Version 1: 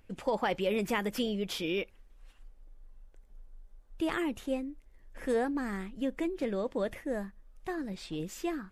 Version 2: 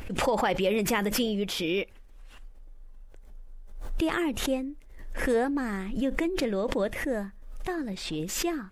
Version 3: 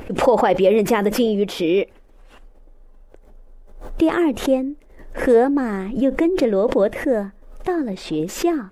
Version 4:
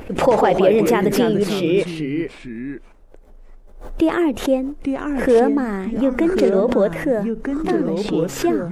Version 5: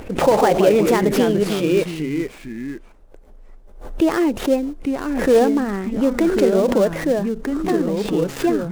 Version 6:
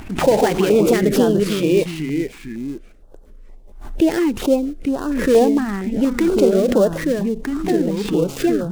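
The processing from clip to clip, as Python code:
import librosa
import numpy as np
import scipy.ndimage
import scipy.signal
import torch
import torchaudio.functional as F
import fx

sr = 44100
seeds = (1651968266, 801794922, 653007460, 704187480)

y1 = fx.pre_swell(x, sr, db_per_s=57.0)
y1 = y1 * 10.0 ** (4.0 / 20.0)
y2 = fx.peak_eq(y1, sr, hz=460.0, db=12.0, octaves=3.0)
y3 = fx.echo_pitch(y2, sr, ms=92, semitones=-3, count=2, db_per_echo=-6.0)
y4 = fx.dead_time(y3, sr, dead_ms=0.093)
y5 = fx.filter_held_notch(y4, sr, hz=4.3, low_hz=500.0, high_hz=2200.0)
y5 = y5 * 10.0 ** (2.0 / 20.0)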